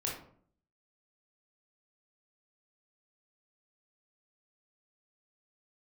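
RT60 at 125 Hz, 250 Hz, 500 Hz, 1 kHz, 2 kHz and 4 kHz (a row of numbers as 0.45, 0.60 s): 0.75, 0.70, 0.60, 0.50, 0.40, 0.30 s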